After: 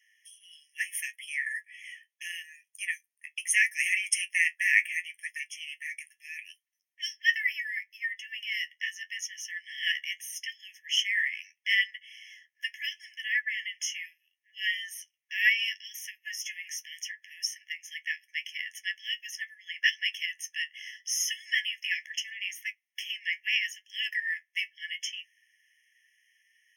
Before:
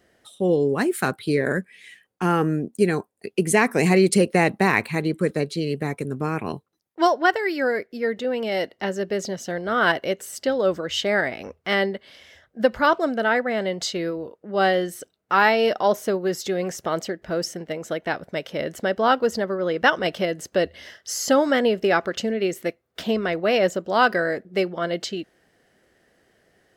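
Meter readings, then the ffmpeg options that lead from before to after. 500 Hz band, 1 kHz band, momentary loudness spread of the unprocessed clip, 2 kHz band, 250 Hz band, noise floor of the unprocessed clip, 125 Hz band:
below −40 dB, below −40 dB, 10 LU, −2.5 dB, below −40 dB, −69 dBFS, below −40 dB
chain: -af "flanger=delay=9.6:depth=3.5:regen=45:speed=0.75:shape=triangular,afftfilt=real='re*eq(mod(floor(b*sr/1024/1700),2),1)':imag='im*eq(mod(floor(b*sr/1024/1700),2),1)':win_size=1024:overlap=0.75,volume=5dB"

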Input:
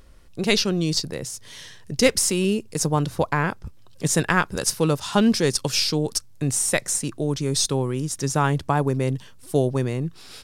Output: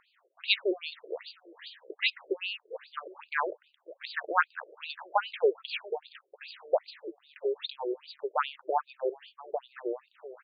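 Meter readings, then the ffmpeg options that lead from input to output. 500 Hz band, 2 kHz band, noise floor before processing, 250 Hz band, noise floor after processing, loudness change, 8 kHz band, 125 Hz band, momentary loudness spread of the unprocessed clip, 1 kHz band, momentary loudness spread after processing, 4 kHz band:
−7.5 dB, −6.0 dB, −45 dBFS, −20.0 dB, −73 dBFS, −10.0 dB, below −40 dB, below −40 dB, 11 LU, −5.5 dB, 18 LU, −9.5 dB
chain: -af "aecho=1:1:688:0.0794,afftfilt=real='re*between(b*sr/1024,440*pow(3500/440,0.5+0.5*sin(2*PI*2.5*pts/sr))/1.41,440*pow(3500/440,0.5+0.5*sin(2*PI*2.5*pts/sr))*1.41)':imag='im*between(b*sr/1024,440*pow(3500/440,0.5+0.5*sin(2*PI*2.5*pts/sr))/1.41,440*pow(3500/440,0.5+0.5*sin(2*PI*2.5*pts/sr))*1.41)':win_size=1024:overlap=0.75"

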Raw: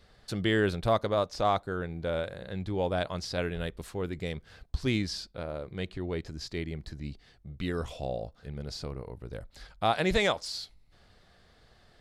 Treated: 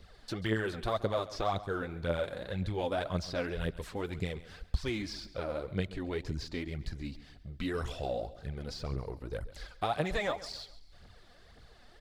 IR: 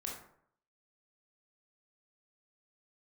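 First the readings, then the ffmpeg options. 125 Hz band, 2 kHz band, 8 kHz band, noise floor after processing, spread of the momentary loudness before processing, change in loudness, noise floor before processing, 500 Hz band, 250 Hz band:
−2.5 dB, −4.0 dB, −6.0 dB, −57 dBFS, 15 LU, −4.0 dB, −62 dBFS, −4.0 dB, −4.0 dB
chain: -filter_complex "[0:a]acrossover=split=750|1500|5400[link_01][link_02][link_03][link_04];[link_01]acompressor=threshold=-34dB:ratio=4[link_05];[link_02]acompressor=threshold=-39dB:ratio=4[link_06];[link_03]acompressor=threshold=-45dB:ratio=4[link_07];[link_04]acompressor=threshold=-59dB:ratio=4[link_08];[link_05][link_06][link_07][link_08]amix=inputs=4:normalize=0,aphaser=in_gain=1:out_gain=1:delay=4.2:decay=0.58:speed=1.9:type=triangular,aecho=1:1:137|274|411:0.15|0.0584|0.0228"

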